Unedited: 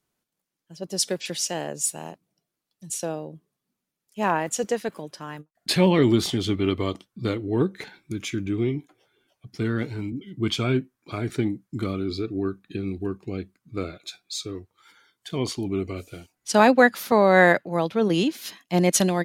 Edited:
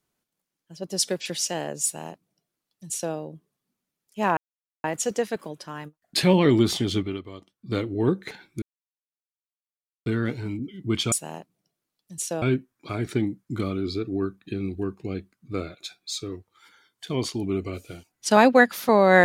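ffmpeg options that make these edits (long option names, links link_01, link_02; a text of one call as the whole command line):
ffmpeg -i in.wav -filter_complex "[0:a]asplit=8[link_01][link_02][link_03][link_04][link_05][link_06][link_07][link_08];[link_01]atrim=end=4.37,asetpts=PTS-STARTPTS,afade=type=out:start_time=4.366:duration=0.004:curve=hsin,apad=pad_dur=0.47[link_09];[link_02]atrim=start=4.37:end=6.82,asetpts=PTS-STARTPTS,afade=type=in:duration=0.004:curve=hsin,afade=type=out:start_time=2.13:duration=0.32:curve=qua:silence=0.188365[link_10];[link_03]atrim=start=6.82:end=6.97,asetpts=PTS-STARTPTS,volume=-14.5dB[link_11];[link_04]atrim=start=6.97:end=8.15,asetpts=PTS-STARTPTS,afade=type=in:duration=0.32:curve=qua:silence=0.188365,afade=type=out:start_time=1.176:duration=0.004:curve=hsin[link_12];[link_05]atrim=start=8.15:end=9.59,asetpts=PTS-STARTPTS,volume=0[link_13];[link_06]atrim=start=9.59:end=10.652,asetpts=PTS-STARTPTS,afade=type=in:duration=0.004:curve=hsin[link_14];[link_07]atrim=start=1.838:end=3.142[link_15];[link_08]atrim=start=10.648[link_16];[link_09][link_10][link_11][link_12][link_13][link_14]concat=n=6:v=0:a=1[link_17];[link_17][link_15]acrossfade=duration=0.004:curve1=hsin:curve2=hsin[link_18];[link_18][link_16]acrossfade=duration=0.004:curve1=hsin:curve2=hsin" out.wav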